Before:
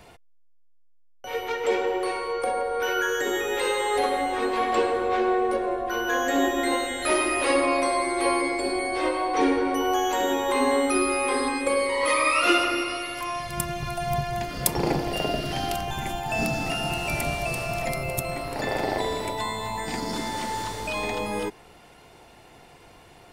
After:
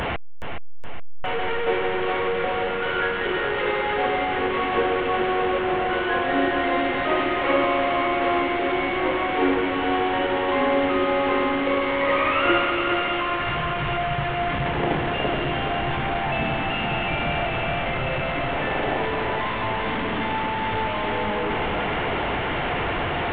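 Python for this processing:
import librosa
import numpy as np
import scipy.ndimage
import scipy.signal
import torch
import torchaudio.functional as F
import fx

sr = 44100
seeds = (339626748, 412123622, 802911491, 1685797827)

p1 = fx.delta_mod(x, sr, bps=16000, step_db=-19.5)
p2 = fx.notch(p1, sr, hz=2500.0, q=22.0)
y = p2 + fx.echo_feedback(p2, sr, ms=419, feedback_pct=54, wet_db=-7, dry=0)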